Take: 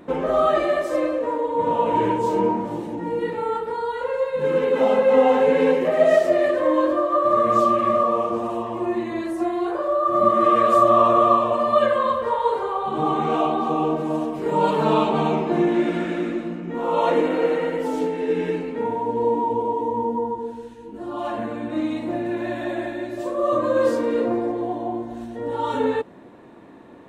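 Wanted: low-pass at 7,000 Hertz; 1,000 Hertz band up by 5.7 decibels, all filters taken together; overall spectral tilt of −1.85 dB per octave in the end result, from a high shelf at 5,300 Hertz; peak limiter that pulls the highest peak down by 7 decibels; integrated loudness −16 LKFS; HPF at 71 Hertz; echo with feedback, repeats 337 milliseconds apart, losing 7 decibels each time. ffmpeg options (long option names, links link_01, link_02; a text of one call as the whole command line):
ffmpeg -i in.wav -af "highpass=71,lowpass=7000,equalizer=frequency=1000:width_type=o:gain=7,highshelf=frequency=5300:gain=-5,alimiter=limit=-6.5dB:level=0:latency=1,aecho=1:1:337|674|1011|1348|1685:0.447|0.201|0.0905|0.0407|0.0183,volume=2dB" out.wav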